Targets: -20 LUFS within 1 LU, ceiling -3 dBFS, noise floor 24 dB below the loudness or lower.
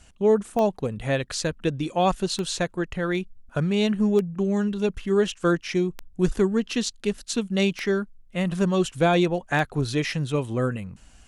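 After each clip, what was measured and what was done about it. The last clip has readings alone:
clicks found 6; loudness -25.0 LUFS; peak level -9.0 dBFS; loudness target -20.0 LUFS
-> de-click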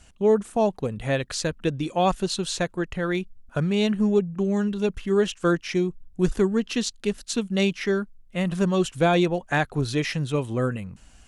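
clicks found 0; loudness -25.0 LUFS; peak level -9.0 dBFS; loudness target -20.0 LUFS
-> trim +5 dB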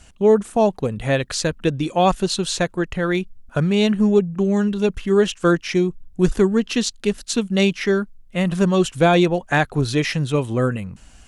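loudness -20.0 LUFS; peak level -4.0 dBFS; noise floor -48 dBFS

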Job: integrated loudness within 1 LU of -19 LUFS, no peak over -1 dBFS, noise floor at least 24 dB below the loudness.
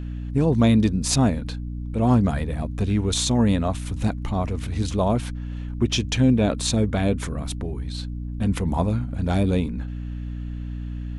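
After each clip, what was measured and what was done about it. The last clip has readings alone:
hum 60 Hz; highest harmonic 300 Hz; hum level -28 dBFS; loudness -23.5 LUFS; peak level -6.5 dBFS; loudness target -19.0 LUFS
-> hum notches 60/120/180/240/300 Hz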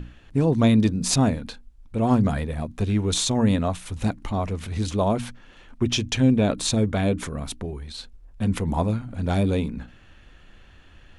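hum not found; loudness -23.5 LUFS; peak level -7.5 dBFS; loudness target -19.0 LUFS
-> trim +4.5 dB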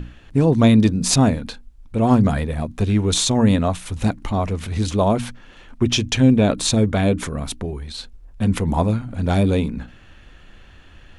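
loudness -19.0 LUFS; peak level -3.0 dBFS; noise floor -46 dBFS

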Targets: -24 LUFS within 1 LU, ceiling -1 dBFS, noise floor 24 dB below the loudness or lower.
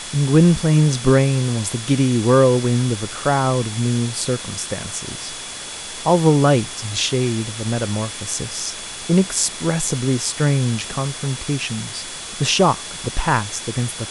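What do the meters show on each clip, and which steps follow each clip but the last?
steady tone 3.4 kHz; tone level -38 dBFS; noise floor -32 dBFS; noise floor target -44 dBFS; loudness -19.5 LUFS; peak level -2.0 dBFS; loudness target -24.0 LUFS
-> band-stop 3.4 kHz, Q 30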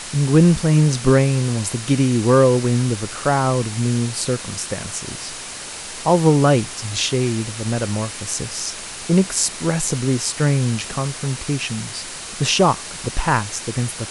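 steady tone not found; noise floor -33 dBFS; noise floor target -44 dBFS
-> noise print and reduce 11 dB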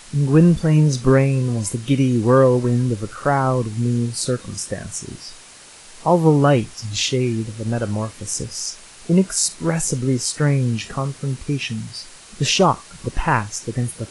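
noise floor -43 dBFS; noise floor target -44 dBFS
-> noise print and reduce 6 dB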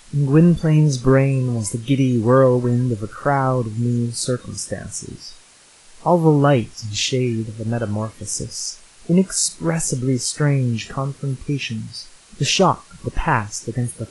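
noise floor -49 dBFS; loudness -19.5 LUFS; peak level -2.0 dBFS; loudness target -24.0 LUFS
-> trim -4.5 dB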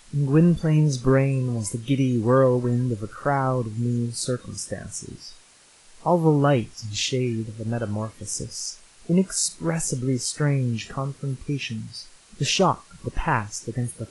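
loudness -24.0 LUFS; peak level -6.5 dBFS; noise floor -53 dBFS

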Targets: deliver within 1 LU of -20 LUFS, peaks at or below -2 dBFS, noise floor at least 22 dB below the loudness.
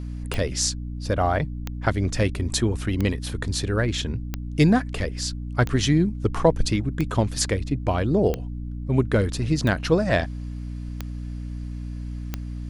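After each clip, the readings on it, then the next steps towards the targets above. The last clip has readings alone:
clicks found 10; hum 60 Hz; highest harmonic 300 Hz; hum level -29 dBFS; loudness -25.0 LUFS; peak level -3.0 dBFS; loudness target -20.0 LUFS
-> de-click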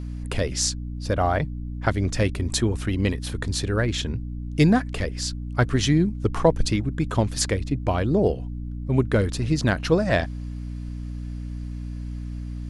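clicks found 0; hum 60 Hz; highest harmonic 300 Hz; hum level -29 dBFS
-> hum notches 60/120/180/240/300 Hz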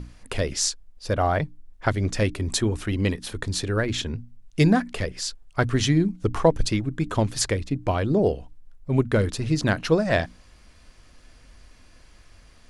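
hum not found; loudness -24.5 LUFS; peak level -3.5 dBFS; loudness target -20.0 LUFS
-> trim +4.5 dB; peak limiter -2 dBFS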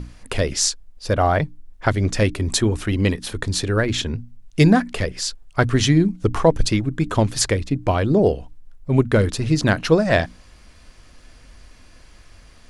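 loudness -20.0 LUFS; peak level -2.0 dBFS; noise floor -48 dBFS

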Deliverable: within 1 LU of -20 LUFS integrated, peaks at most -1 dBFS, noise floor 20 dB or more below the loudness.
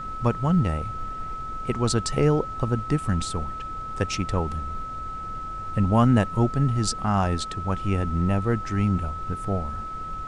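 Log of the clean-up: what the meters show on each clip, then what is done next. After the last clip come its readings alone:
steady tone 1.3 kHz; tone level -32 dBFS; noise floor -34 dBFS; noise floor target -46 dBFS; loudness -25.5 LUFS; peak level -6.5 dBFS; loudness target -20.0 LUFS
-> band-stop 1.3 kHz, Q 30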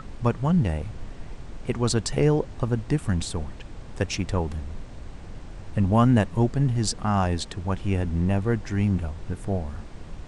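steady tone not found; noise floor -42 dBFS; noise floor target -46 dBFS
-> noise print and reduce 6 dB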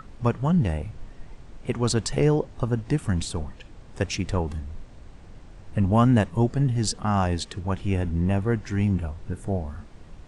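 noise floor -47 dBFS; loudness -25.5 LUFS; peak level -7.0 dBFS; loudness target -20.0 LUFS
-> trim +5.5 dB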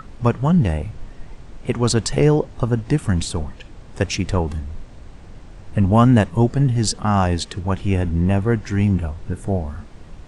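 loudness -20.0 LUFS; peak level -1.5 dBFS; noise floor -41 dBFS

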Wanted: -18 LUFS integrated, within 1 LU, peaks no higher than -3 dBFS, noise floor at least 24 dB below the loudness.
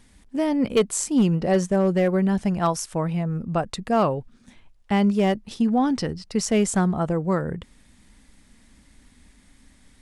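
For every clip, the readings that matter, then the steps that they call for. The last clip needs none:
clipped samples 0.4%; clipping level -12.5 dBFS; loudness -23.0 LUFS; peak level -12.5 dBFS; loudness target -18.0 LUFS
-> clip repair -12.5 dBFS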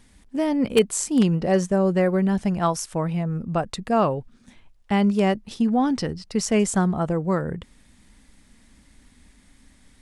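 clipped samples 0.0%; loudness -23.0 LUFS; peak level -3.5 dBFS; loudness target -18.0 LUFS
-> trim +5 dB; peak limiter -3 dBFS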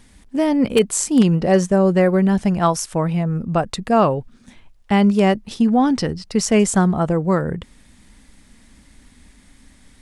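loudness -18.0 LUFS; peak level -3.0 dBFS; noise floor -51 dBFS

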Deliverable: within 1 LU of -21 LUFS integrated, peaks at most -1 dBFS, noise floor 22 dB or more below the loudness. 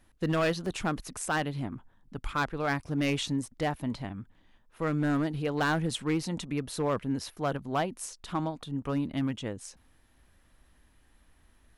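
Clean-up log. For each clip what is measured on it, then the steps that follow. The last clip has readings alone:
clipped samples 1.1%; clipping level -21.5 dBFS; dropouts 1; longest dropout 1.7 ms; loudness -31.5 LUFS; peak level -21.5 dBFS; loudness target -21.0 LUFS
-> clip repair -21.5 dBFS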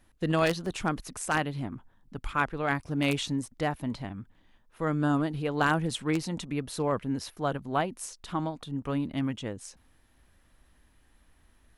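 clipped samples 0.0%; dropouts 1; longest dropout 1.7 ms
-> interpolate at 0.66 s, 1.7 ms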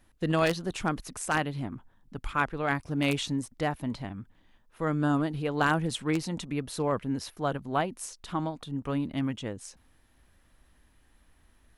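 dropouts 0; loudness -30.5 LUFS; peak level -12.5 dBFS; loudness target -21.0 LUFS
-> trim +9.5 dB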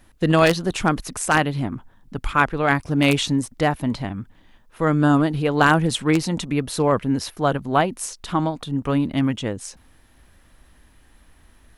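loudness -21.0 LUFS; peak level -3.0 dBFS; noise floor -55 dBFS

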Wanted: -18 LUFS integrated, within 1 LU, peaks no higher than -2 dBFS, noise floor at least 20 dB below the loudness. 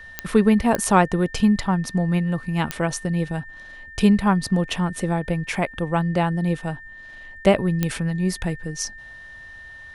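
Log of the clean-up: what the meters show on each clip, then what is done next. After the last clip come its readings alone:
clicks found 4; steady tone 1.8 kHz; tone level -39 dBFS; loudness -22.0 LUFS; peak level -2.5 dBFS; loudness target -18.0 LUFS
-> de-click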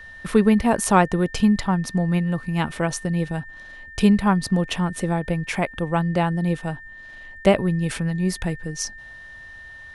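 clicks found 0; steady tone 1.8 kHz; tone level -39 dBFS
-> band-stop 1.8 kHz, Q 30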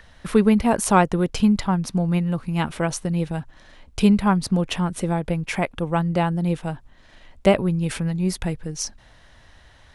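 steady tone not found; loudness -22.0 LUFS; peak level -2.5 dBFS; loudness target -18.0 LUFS
-> trim +4 dB; peak limiter -2 dBFS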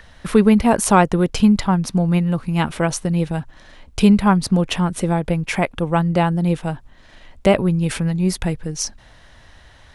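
loudness -18.5 LUFS; peak level -2.0 dBFS; noise floor -48 dBFS

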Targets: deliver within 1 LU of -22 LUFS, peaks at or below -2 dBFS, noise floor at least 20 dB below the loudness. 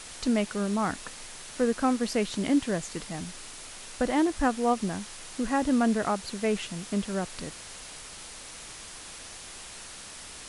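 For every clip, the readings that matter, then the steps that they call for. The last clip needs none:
noise floor -44 dBFS; noise floor target -49 dBFS; loudness -28.5 LUFS; peak level -12.5 dBFS; loudness target -22.0 LUFS
-> noise reduction 6 dB, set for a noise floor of -44 dBFS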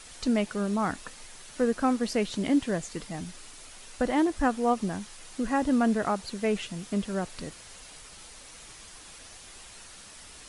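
noise floor -48 dBFS; noise floor target -49 dBFS
-> noise reduction 6 dB, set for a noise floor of -48 dBFS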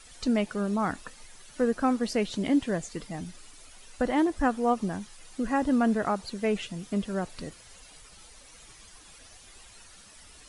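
noise floor -52 dBFS; loudness -28.5 LUFS; peak level -12.5 dBFS; loudness target -22.0 LUFS
-> trim +6.5 dB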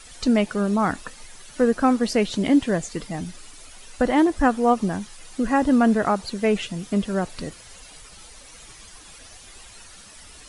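loudness -22.0 LUFS; peak level -6.0 dBFS; noise floor -46 dBFS

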